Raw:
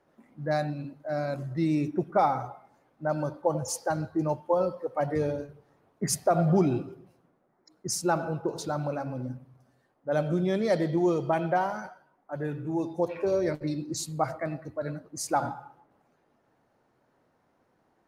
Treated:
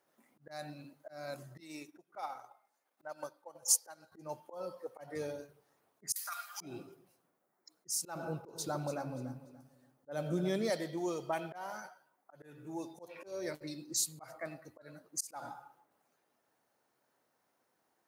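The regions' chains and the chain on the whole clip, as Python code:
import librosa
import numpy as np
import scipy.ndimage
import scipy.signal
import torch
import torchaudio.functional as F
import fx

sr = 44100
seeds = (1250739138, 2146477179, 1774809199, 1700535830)

y = fx.chain(x, sr, fx.highpass(hz=570.0, slope=6),
    fx.transient(attack_db=7, sustain_db=-8), at=(1.6, 4.12))
y = fx.chain(y, sr, fx.steep_highpass(hz=1200.0, slope=36),
    fx.high_shelf(hz=10000.0, db=12.0),
    fx.over_compress(threshold_db=-36.0, ratio=-0.5), at=(6.12, 6.61))
y = fx.chain(y, sr, fx.low_shelf(hz=440.0, db=9.5),
    fx.echo_feedback(ms=290, feedback_pct=26, wet_db=-14.5), at=(8.15, 10.7))
y = fx.low_shelf(y, sr, hz=150.0, db=3.5)
y = fx.auto_swell(y, sr, attack_ms=218.0)
y = fx.riaa(y, sr, side='recording')
y = F.gain(torch.from_numpy(y), -8.0).numpy()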